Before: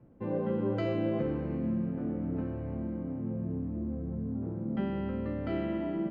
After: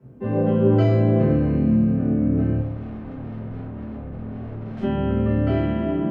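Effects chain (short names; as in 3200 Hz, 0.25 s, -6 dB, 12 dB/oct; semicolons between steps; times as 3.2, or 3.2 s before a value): HPF 49 Hz 24 dB/oct; 2.59–4.83 tube stage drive 45 dB, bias 0.5; reverb RT60 0.45 s, pre-delay 4 ms, DRR -8 dB; gain +1 dB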